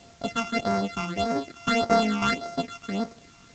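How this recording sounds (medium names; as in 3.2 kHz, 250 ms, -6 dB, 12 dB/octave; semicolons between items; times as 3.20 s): a buzz of ramps at a fixed pitch in blocks of 64 samples; phasing stages 8, 1.7 Hz, lowest notch 510–3200 Hz; a quantiser's noise floor 10-bit, dither triangular; G.722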